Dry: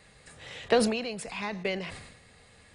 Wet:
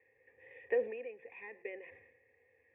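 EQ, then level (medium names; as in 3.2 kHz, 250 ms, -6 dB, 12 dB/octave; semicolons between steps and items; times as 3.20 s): cascade formant filter e; high-pass 80 Hz 24 dB/octave; static phaser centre 910 Hz, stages 8; +1.5 dB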